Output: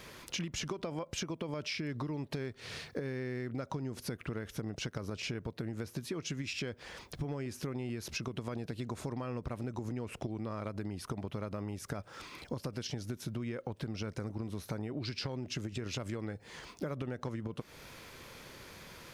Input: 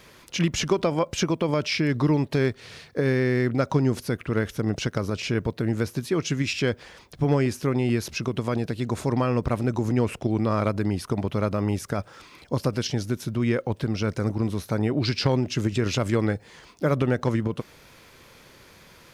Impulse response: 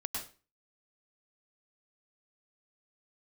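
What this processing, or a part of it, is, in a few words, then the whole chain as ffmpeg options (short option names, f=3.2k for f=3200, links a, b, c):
serial compression, leveller first: -af "acompressor=threshold=-25dB:ratio=3,acompressor=threshold=-36dB:ratio=5"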